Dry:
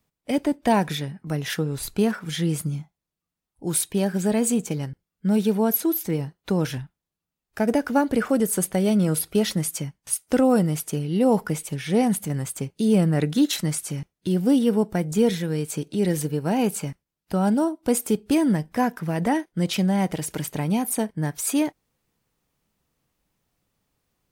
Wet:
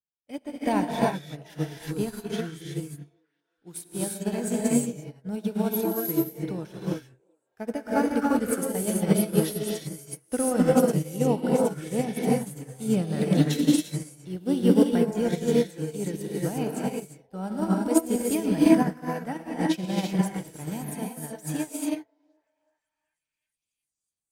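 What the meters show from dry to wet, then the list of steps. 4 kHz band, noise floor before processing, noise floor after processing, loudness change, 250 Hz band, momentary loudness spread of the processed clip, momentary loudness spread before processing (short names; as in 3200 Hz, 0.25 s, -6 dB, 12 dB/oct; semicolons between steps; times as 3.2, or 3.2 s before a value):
-5.5 dB, under -85 dBFS, under -85 dBFS, -3.0 dB, -2.5 dB, 14 LU, 9 LU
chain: on a send: delay with a stepping band-pass 0.373 s, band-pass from 460 Hz, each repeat 0.7 oct, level -11 dB; on the sum: non-linear reverb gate 0.38 s rising, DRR -3.5 dB; upward expander 2.5:1, over -32 dBFS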